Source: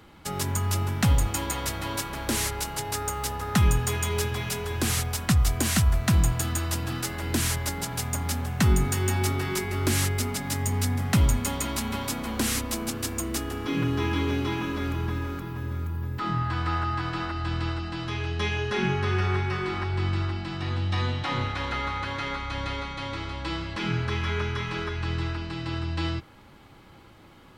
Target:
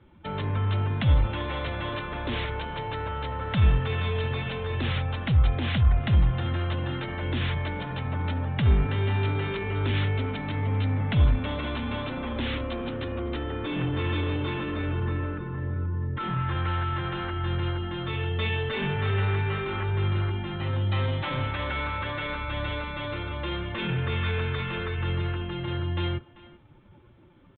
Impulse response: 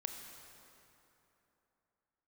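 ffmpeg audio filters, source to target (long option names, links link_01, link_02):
-filter_complex "[0:a]afftdn=noise_reduction=13:noise_floor=-42,equalizer=frequency=510:width_type=o:width=0.26:gain=7,acrossover=split=120|2400[link_01][link_02][link_03];[link_02]asoftclip=type=tanh:threshold=-30.5dB[link_04];[link_01][link_04][link_03]amix=inputs=3:normalize=0,asetrate=46722,aresample=44100,atempo=0.943874,aresample=8000,aresample=44100,asplit=2[link_05][link_06];[link_06]adelay=390,highpass=300,lowpass=3400,asoftclip=type=hard:threshold=-22.5dB,volume=-18dB[link_07];[link_05][link_07]amix=inputs=2:normalize=0,volume=2dB"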